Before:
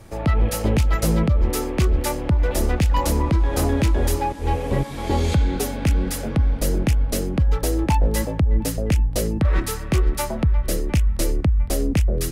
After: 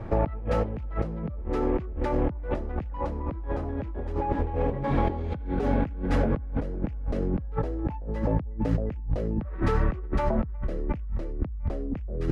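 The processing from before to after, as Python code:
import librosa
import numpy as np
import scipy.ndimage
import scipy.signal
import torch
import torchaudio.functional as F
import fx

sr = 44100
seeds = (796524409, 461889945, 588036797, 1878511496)

y = scipy.signal.sosfilt(scipy.signal.butter(2, 1500.0, 'lowpass', fs=sr, output='sos'), x)
y = fx.over_compress(y, sr, threshold_db=-29.0, ratio=-1.0)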